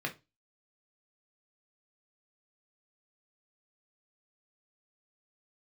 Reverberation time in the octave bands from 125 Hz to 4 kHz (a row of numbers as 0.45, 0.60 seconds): 0.35, 0.30, 0.25, 0.25, 0.20, 0.25 seconds